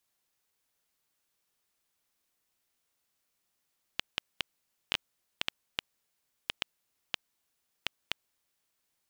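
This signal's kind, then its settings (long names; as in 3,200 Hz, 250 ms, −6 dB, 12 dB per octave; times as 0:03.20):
Geiger counter clicks 2.9 per second −10.5 dBFS 4.80 s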